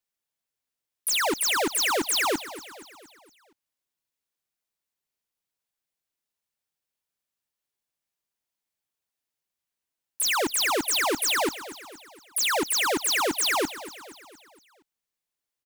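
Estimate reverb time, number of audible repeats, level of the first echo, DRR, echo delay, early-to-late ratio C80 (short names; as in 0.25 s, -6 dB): none, 4, -15.0 dB, none, 0.234 s, none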